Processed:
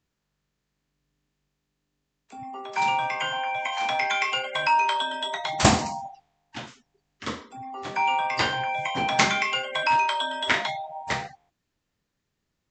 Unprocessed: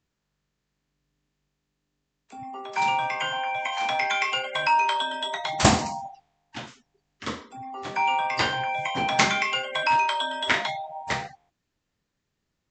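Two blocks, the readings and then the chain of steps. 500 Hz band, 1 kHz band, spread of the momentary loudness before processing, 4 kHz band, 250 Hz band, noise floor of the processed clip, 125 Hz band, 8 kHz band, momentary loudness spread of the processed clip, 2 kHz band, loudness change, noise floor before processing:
0.0 dB, 0.0 dB, 18 LU, 0.0 dB, 0.0 dB, -80 dBFS, 0.0 dB, 0.0 dB, 18 LU, 0.0 dB, 0.0 dB, -80 dBFS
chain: rattling part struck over -22 dBFS, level -23 dBFS

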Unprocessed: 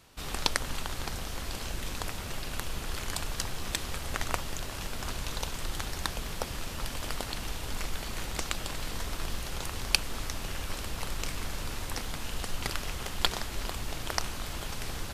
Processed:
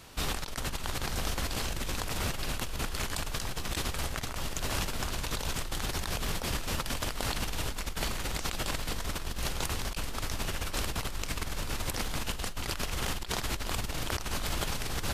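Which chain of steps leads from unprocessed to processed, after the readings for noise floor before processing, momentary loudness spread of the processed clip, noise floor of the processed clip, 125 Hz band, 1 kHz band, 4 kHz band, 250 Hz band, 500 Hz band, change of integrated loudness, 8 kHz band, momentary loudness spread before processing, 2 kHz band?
-39 dBFS, 3 LU, -37 dBFS, +2.5 dB, +1.0 dB, 0.0 dB, +2.5 dB, +2.0 dB, +1.0 dB, +1.0 dB, 7 LU, +0.5 dB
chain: negative-ratio compressor -37 dBFS, ratio -1; gain +4 dB

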